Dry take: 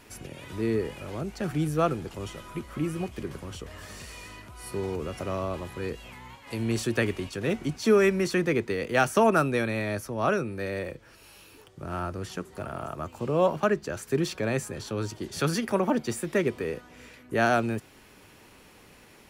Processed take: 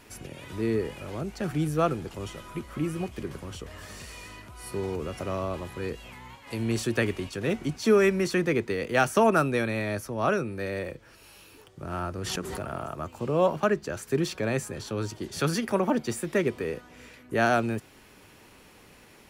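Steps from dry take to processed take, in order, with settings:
0:12.18–0:12.85: background raised ahead of every attack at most 24 dB per second

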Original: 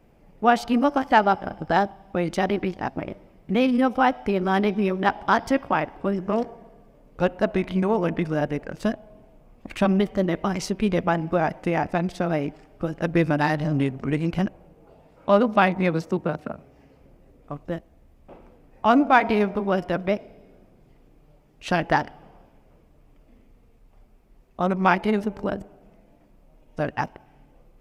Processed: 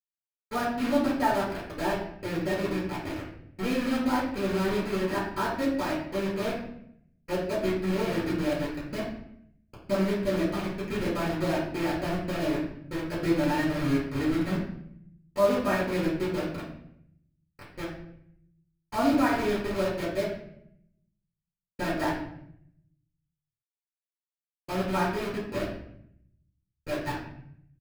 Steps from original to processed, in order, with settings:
high-shelf EQ 2,800 Hz −9.5 dB
comb filter 3.2 ms, depth 37%
dynamic equaliser 460 Hz, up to +3 dB, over −32 dBFS, Q 0.9
bit reduction 4 bits
convolution reverb RT60 0.70 s, pre-delay 78 ms, DRR −60 dB
level +5 dB

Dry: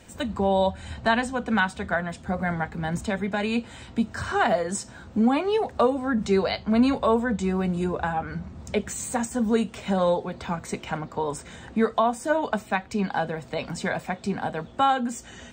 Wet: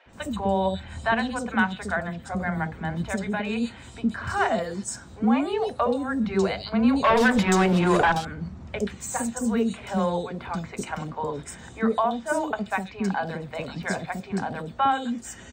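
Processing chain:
0:07.04–0:08.12: mid-hump overdrive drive 25 dB, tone 5,200 Hz, clips at −10 dBFS
three-band delay without the direct sound mids, lows, highs 60/130 ms, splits 530/3,500 Hz

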